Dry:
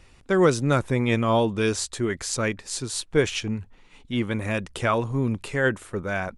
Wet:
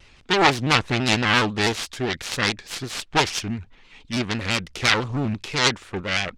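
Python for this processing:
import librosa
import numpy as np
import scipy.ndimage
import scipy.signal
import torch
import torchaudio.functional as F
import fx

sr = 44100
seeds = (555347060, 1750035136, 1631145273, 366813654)

y = fx.self_delay(x, sr, depth_ms=1.0)
y = scipy.signal.sosfilt(scipy.signal.butter(2, 4300.0, 'lowpass', fs=sr, output='sos'), y)
y = fx.high_shelf(y, sr, hz=2100.0, db=12.0)
y = fx.vibrato_shape(y, sr, shape='square', rate_hz=6.0, depth_cents=100.0)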